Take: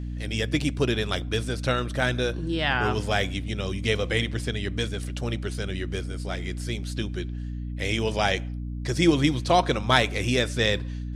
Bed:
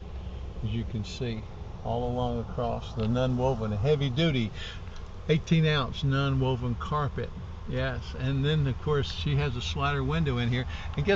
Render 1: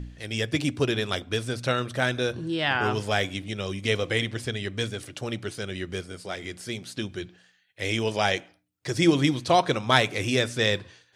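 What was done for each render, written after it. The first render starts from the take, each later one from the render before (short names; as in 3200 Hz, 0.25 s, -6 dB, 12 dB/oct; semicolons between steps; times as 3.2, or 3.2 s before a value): de-hum 60 Hz, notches 5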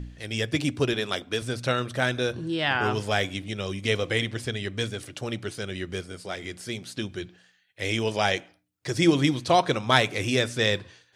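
0.93–1.42 Bessel high-pass 170 Hz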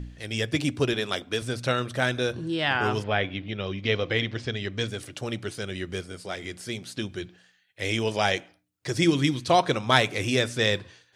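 3.02–4.87 LPF 3000 Hz -> 7200 Hz 24 dB/oct; 9.04–9.5 bell 670 Hz -8 dB 1.2 oct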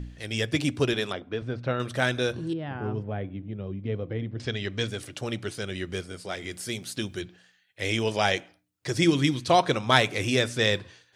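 1.12–1.8 tape spacing loss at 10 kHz 36 dB; 2.53–4.4 band-pass 140 Hz, Q 0.58; 6.51–7.22 high shelf 8400 Hz +11 dB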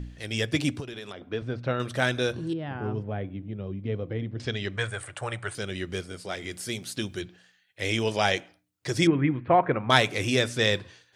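0.8–1.24 compressor, threshold -35 dBFS; 4.76–5.55 EQ curve 120 Hz 0 dB, 250 Hz -15 dB, 570 Hz +2 dB, 960 Hz +7 dB, 1700 Hz +7 dB, 2700 Hz -2 dB, 5800 Hz -11 dB, 8900 Hz +8 dB, 13000 Hz -24 dB; 9.07–9.9 steep low-pass 2200 Hz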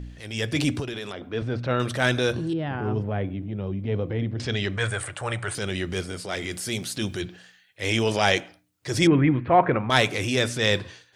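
AGC gain up to 5.5 dB; transient shaper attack -6 dB, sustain +3 dB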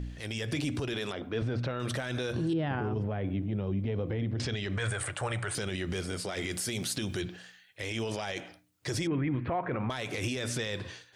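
compressor 6:1, threshold -23 dBFS, peak gain reduction 11 dB; limiter -23 dBFS, peak gain reduction 11.5 dB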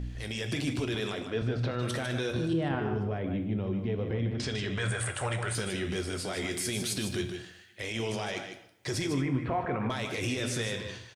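echo 0.152 s -8 dB; two-slope reverb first 0.49 s, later 1.9 s, from -21 dB, DRR 7.5 dB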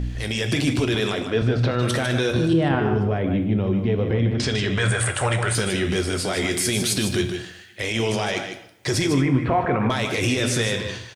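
gain +10 dB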